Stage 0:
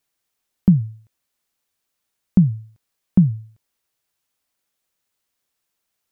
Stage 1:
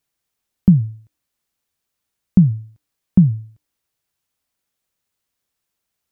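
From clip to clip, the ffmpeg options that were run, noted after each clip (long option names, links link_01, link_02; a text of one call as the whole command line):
ffmpeg -i in.wav -af "equalizer=frequency=73:width=0.36:gain=6,bandreject=frequency=300.3:width_type=h:width=4,bandreject=frequency=600.6:width_type=h:width=4,bandreject=frequency=900.9:width_type=h:width=4,volume=-1.5dB" out.wav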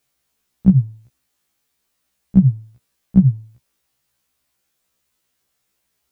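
ffmpeg -i in.wav -af "alimiter=limit=-9dB:level=0:latency=1:release=355,afftfilt=real='re*1.73*eq(mod(b,3),0)':imag='im*1.73*eq(mod(b,3),0)':win_size=2048:overlap=0.75,volume=9dB" out.wav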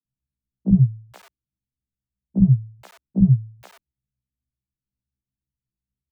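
ffmpeg -i in.wav -filter_complex "[0:a]acrossover=split=110|230[link_01][link_02][link_03];[link_03]aeval=exprs='val(0)*gte(abs(val(0)),0.0168)':channel_layout=same[link_04];[link_01][link_02][link_04]amix=inputs=3:normalize=0,acrossover=split=230|690[link_05][link_06][link_07];[link_05]adelay=40[link_08];[link_07]adelay=480[link_09];[link_08][link_06][link_09]amix=inputs=3:normalize=0" out.wav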